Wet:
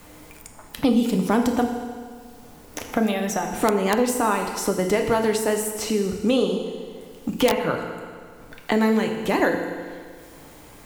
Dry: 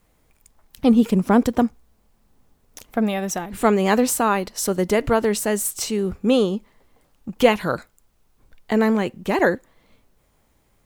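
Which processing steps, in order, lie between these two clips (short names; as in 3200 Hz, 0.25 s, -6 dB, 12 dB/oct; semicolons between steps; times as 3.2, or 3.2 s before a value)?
FDN reverb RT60 1.1 s, low-frequency decay 1×, high-frequency decay 0.95×, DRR 3 dB; wrapped overs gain 2.5 dB; three-band squash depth 70%; gain -3.5 dB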